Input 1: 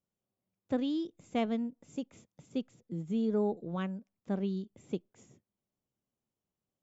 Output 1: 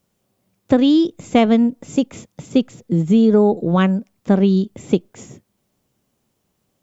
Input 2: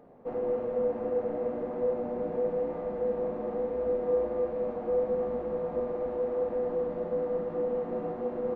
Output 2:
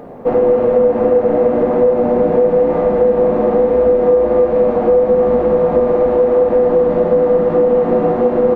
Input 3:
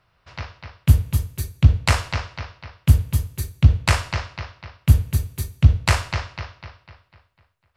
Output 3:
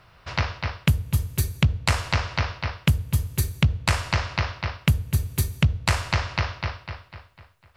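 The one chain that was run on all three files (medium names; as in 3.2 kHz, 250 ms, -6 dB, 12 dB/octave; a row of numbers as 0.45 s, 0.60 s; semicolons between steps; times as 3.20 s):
compression 5:1, threshold -30 dBFS; peak normalisation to -2 dBFS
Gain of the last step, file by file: +21.0 dB, +21.5 dB, +10.5 dB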